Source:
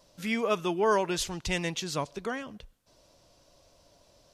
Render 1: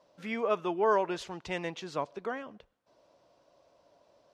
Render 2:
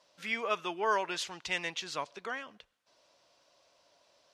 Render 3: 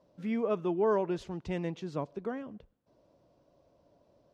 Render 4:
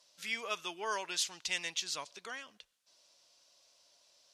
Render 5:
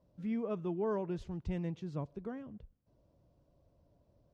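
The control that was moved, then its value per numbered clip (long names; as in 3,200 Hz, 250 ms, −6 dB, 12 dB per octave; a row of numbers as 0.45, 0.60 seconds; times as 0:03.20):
resonant band-pass, frequency: 730, 1,900, 280, 4,900, 100 Hertz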